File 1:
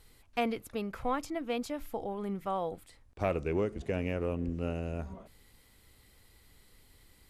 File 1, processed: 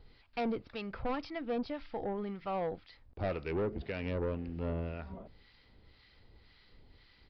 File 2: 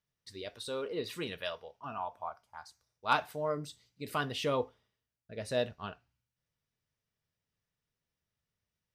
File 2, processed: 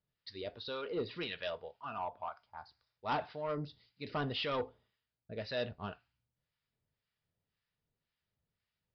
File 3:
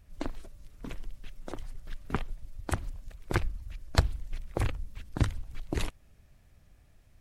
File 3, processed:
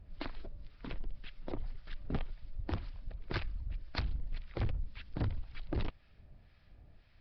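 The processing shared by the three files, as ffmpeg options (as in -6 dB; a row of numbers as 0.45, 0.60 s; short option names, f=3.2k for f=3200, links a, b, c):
-filter_complex "[0:a]acontrast=72,acrossover=split=940[a][b];[a]aeval=exprs='val(0)*(1-0.7/2+0.7/2*cos(2*PI*1.9*n/s))':c=same[c];[b]aeval=exprs='val(0)*(1-0.7/2-0.7/2*cos(2*PI*1.9*n/s))':c=same[d];[c][d]amix=inputs=2:normalize=0,aresample=11025,asoftclip=type=tanh:threshold=-25.5dB,aresample=44100,bandreject=f=1.1k:w=22,volume=-3dB"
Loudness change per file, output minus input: -2.5, -3.5, -6.5 LU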